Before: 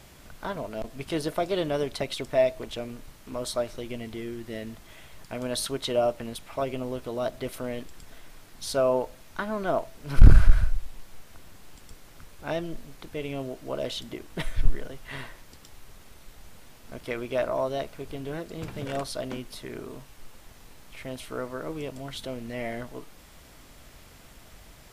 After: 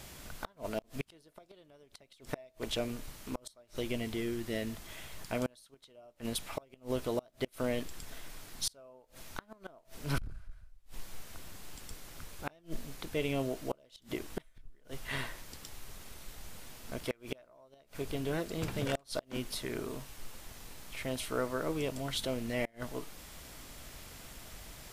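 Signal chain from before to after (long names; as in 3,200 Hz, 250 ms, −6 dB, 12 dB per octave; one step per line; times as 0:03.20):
high-shelf EQ 3,300 Hz +5 dB
gate with flip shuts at −21 dBFS, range −32 dB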